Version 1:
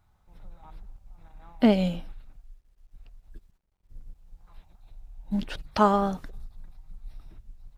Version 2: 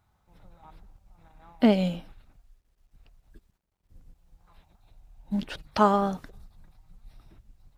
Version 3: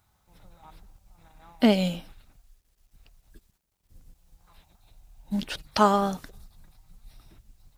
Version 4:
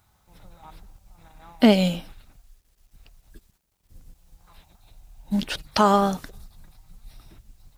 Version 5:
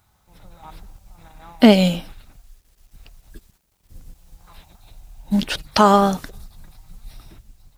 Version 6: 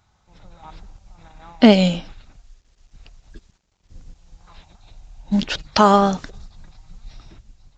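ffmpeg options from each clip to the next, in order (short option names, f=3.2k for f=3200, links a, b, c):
-af "highpass=f=74:p=1"
-af "highshelf=f=3.3k:g=11"
-af "alimiter=level_in=9.5dB:limit=-1dB:release=50:level=0:latency=1,volume=-5dB"
-af "dynaudnorm=f=170:g=7:m=5dB,volume=1.5dB"
-af "aresample=16000,aresample=44100"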